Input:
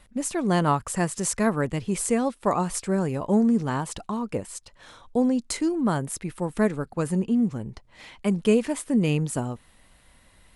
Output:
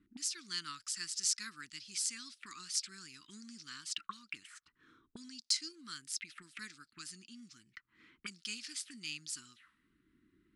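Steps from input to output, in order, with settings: Chebyshev band-stop 320–1300 Hz, order 3; auto-wah 310–4900 Hz, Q 3.9, up, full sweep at -28.5 dBFS; gain +7 dB

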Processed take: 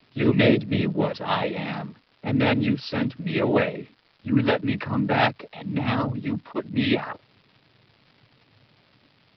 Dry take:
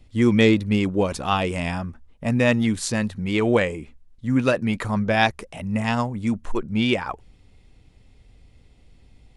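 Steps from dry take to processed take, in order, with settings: noise vocoder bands 12; crackle 490/s -42 dBFS; downsampling 11025 Hz; gain -1.5 dB

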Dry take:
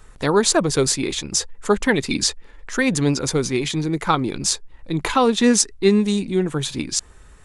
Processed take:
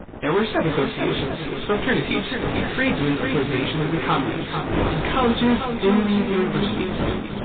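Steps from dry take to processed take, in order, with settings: wind noise 390 Hz -29 dBFS; 1.99–3.21 high shelf 2600 Hz +6.5 dB; de-hum 86.09 Hz, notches 14; 4.2–5.07 dynamic EQ 240 Hz, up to -4 dB, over -34 dBFS, Q 3.6; chorus 0.27 Hz, delay 17.5 ms, depth 3.6 ms; soft clip -19 dBFS, distortion -10 dB; added harmonics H 3 -21 dB, 7 -32 dB, 8 -15 dB, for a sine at -19 dBFS; swung echo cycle 0.743 s, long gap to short 1.5:1, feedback 39%, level -7 dB; gain +5 dB; MP3 16 kbps 8000 Hz

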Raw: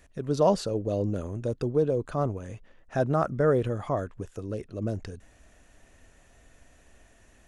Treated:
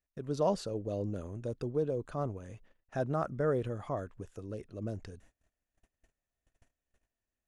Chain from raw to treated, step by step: gate -51 dBFS, range -26 dB; gain -7.5 dB

